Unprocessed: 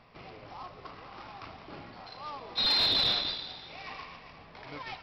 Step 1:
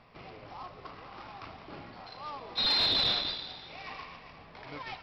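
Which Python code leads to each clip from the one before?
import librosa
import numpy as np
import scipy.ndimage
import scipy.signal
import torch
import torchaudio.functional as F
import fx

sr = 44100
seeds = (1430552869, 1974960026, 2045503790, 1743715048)

y = fx.high_shelf(x, sr, hz=10000.0, db=-9.0)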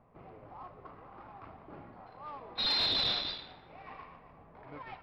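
y = fx.env_lowpass(x, sr, base_hz=890.0, full_db=-25.5)
y = y * librosa.db_to_amplitude(-3.0)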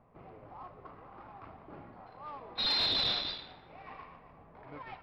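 y = x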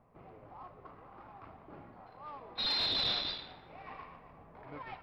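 y = fx.rider(x, sr, range_db=10, speed_s=0.5)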